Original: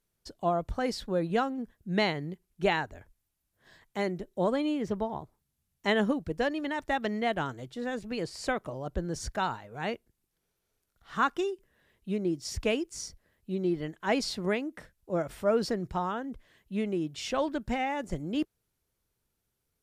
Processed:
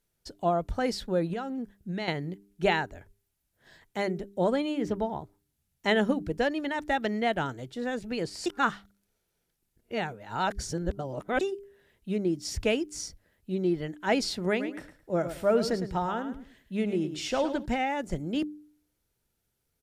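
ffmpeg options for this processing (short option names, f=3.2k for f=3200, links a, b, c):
-filter_complex "[0:a]asettb=1/sr,asplit=3[a][b][c];[a]atrim=end=1.334[d];[b]atrim=start=1.33:end=2.08,asetpts=PTS-STARTPTS,afade=t=in:d=0.004:c=qsin,afade=t=out:st=0.746:d=0.004:c=qsin,acompressor=threshold=-32dB:ratio=6:attack=3.2:release=140:knee=1:detection=peak[e];[c]atrim=start=2.076[f];[d][e]acrossfade=d=0.004:c1=hsin:c2=qsin[g];[g][f]acrossfade=d=0.004:c1=qsin:c2=hsin,asplit=3[h][i][j];[h]afade=t=out:st=14.59:d=0.02[k];[i]aecho=1:1:108|216|324:0.299|0.0657|0.0144,afade=t=in:st=14.59:d=0.02,afade=t=out:st=17.64:d=0.02[l];[j]afade=t=in:st=17.64:d=0.02[m];[k][l][m]amix=inputs=3:normalize=0,asplit=3[n][o][p];[n]atrim=end=8.462[q];[o]atrim=start=8.458:end=11.412,asetpts=PTS-STARTPTS,areverse[r];[p]atrim=start=11.408[s];[q][r]acrossfade=d=0.004:c1=hsin:c2=hsin[t];[t][s]acrossfade=d=0.004:c1=hsin:c2=hsin,bandreject=f=1.1k:w=9.1,bandreject=f=99.89:t=h:w=4,bandreject=f=199.78:t=h:w=4,bandreject=f=299.67:t=h:w=4,bandreject=f=399.56:t=h:w=4,volume=2dB"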